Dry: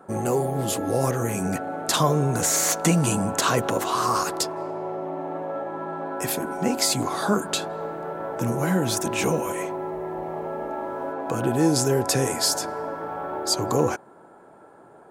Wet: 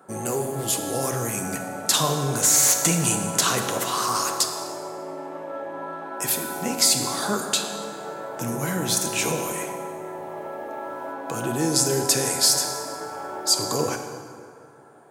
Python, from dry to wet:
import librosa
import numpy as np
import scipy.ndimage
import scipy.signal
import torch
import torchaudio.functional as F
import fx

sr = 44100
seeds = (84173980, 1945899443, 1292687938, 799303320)

y = scipy.signal.sosfilt(scipy.signal.butter(2, 84.0, 'highpass', fs=sr, output='sos'), x)
y = fx.high_shelf(y, sr, hz=2300.0, db=10.5)
y = fx.rev_plate(y, sr, seeds[0], rt60_s=2.2, hf_ratio=0.65, predelay_ms=0, drr_db=4.5)
y = F.gain(torch.from_numpy(y), -5.0).numpy()